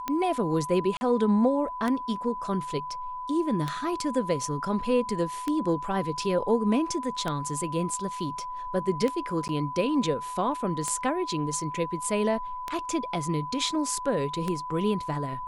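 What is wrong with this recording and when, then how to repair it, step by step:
scratch tick 33 1/3 rpm −15 dBFS
whistle 1,000 Hz −33 dBFS
0:00.97–0:01.01: drop-out 40 ms
0:09.48–0:09.49: drop-out 9.6 ms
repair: click removal
notch filter 1,000 Hz, Q 30
repair the gap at 0:00.97, 40 ms
repair the gap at 0:09.48, 9.6 ms

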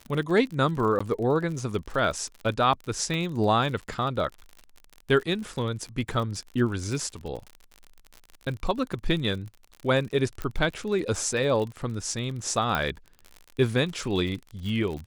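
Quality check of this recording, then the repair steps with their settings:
surface crackle 53 per second −33 dBFS
0:00.99–0:01.00: drop-out 15 ms
0:03.14: click −19 dBFS
0:10.42: click −18 dBFS
0:12.75: click −13 dBFS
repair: click removal
repair the gap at 0:00.99, 15 ms

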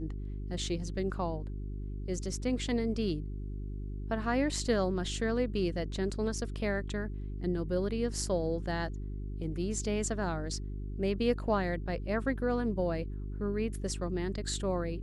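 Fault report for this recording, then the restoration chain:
mains hum 50 Hz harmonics 8 −38 dBFS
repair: hum removal 50 Hz, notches 8

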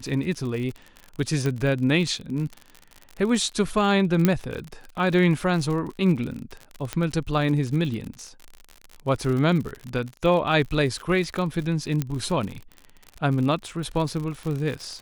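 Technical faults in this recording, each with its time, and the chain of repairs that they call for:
surface crackle 58 per second −30 dBFS
0:01.46: click −14 dBFS
0:04.25: click −6 dBFS
0:06.93: click −12 dBFS
0:12.02: click −12 dBFS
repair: click removal

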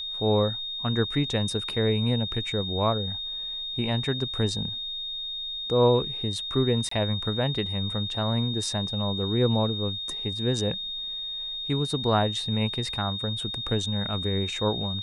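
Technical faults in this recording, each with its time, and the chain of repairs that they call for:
whistle 3,700 Hz −31 dBFS
0:06.89–0:06.91: drop-out 24 ms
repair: notch filter 3,700 Hz, Q 30
repair the gap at 0:06.89, 24 ms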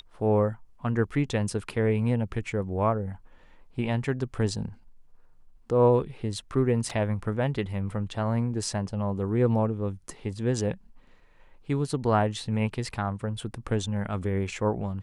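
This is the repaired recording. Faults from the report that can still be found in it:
none of them is left

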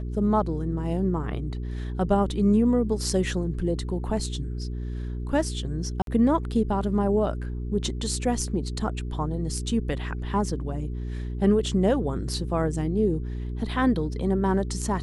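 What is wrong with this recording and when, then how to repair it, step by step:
mains hum 60 Hz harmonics 7 −31 dBFS
0:06.02–0:06.07: drop-out 52 ms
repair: hum removal 60 Hz, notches 7
repair the gap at 0:06.02, 52 ms

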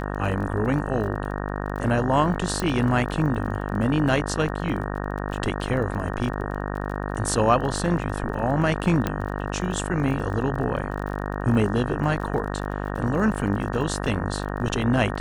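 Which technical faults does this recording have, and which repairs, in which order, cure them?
mains buzz 50 Hz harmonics 37 −29 dBFS
surface crackle 28 per second −33 dBFS
0:02.60: click
0:09.07: click −10 dBFS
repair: click removal
hum removal 50 Hz, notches 37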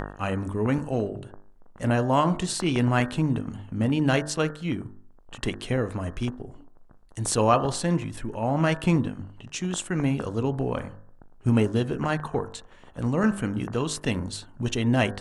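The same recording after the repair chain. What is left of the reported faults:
0:02.60: click
0:09.07: click

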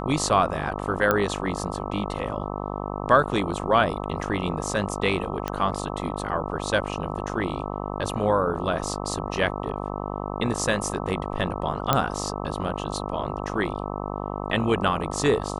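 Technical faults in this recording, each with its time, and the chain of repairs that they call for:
mains buzz 50 Hz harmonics 26 −31 dBFS
0:01.11: click −8 dBFS
0:05.48: click −12 dBFS
0:11.93: click −5 dBFS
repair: click removal
hum removal 50 Hz, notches 26

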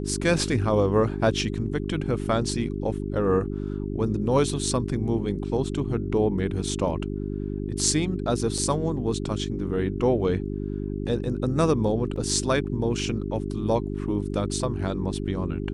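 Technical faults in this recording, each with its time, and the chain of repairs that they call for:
mains hum 50 Hz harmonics 8 −30 dBFS
0:08.58: drop-out 3.2 ms
0:12.16: drop-out 2.8 ms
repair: hum removal 50 Hz, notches 8
repair the gap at 0:08.58, 3.2 ms
repair the gap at 0:12.16, 2.8 ms

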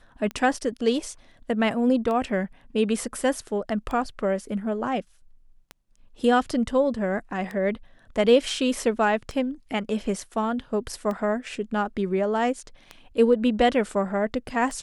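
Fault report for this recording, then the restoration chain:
scratch tick 33 1/3 rpm −20 dBFS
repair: click removal

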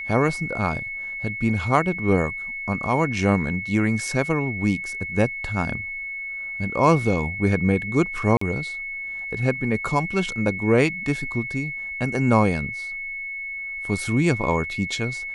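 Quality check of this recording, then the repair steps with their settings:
whistle 2,200 Hz −29 dBFS
0:08.37–0:08.41: drop-out 44 ms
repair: notch filter 2,200 Hz, Q 30
repair the gap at 0:08.37, 44 ms

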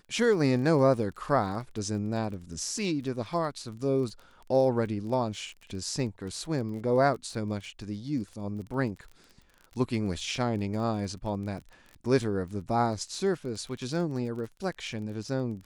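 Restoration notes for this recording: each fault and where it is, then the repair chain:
surface crackle 25 per second −38 dBFS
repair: click removal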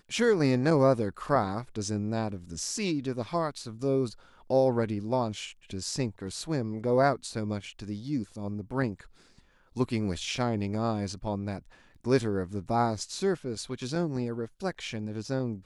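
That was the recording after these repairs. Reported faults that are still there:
none of them is left

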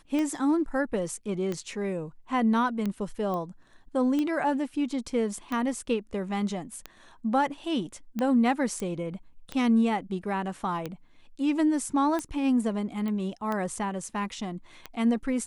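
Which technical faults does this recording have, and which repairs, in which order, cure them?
scratch tick 45 rpm −18 dBFS
0:03.34: click −22 dBFS
0:08.80: click
0:13.08: click −23 dBFS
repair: click removal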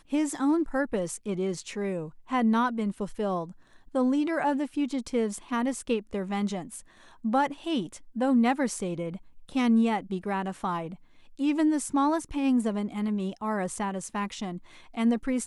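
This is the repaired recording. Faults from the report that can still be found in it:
0:03.34: click

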